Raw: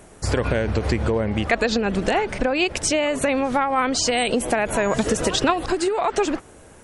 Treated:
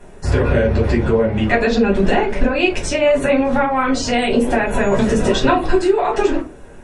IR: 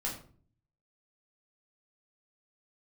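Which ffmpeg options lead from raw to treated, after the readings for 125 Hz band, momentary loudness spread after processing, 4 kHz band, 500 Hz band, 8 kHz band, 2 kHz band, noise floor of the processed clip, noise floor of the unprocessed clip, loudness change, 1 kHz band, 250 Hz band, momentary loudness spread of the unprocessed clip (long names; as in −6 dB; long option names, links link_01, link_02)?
+6.5 dB, 3 LU, 0.0 dB, +6.0 dB, −4.5 dB, +3.5 dB, −38 dBFS, −47 dBFS, +5.0 dB, +3.5 dB, +6.5 dB, 3 LU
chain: -filter_complex "[0:a]lowpass=frequency=3600:poles=1[link_01];[1:a]atrim=start_sample=2205,afade=type=out:start_time=0.38:duration=0.01,atrim=end_sample=17199,asetrate=83790,aresample=44100[link_02];[link_01][link_02]afir=irnorm=-1:irlink=0,volume=6dB"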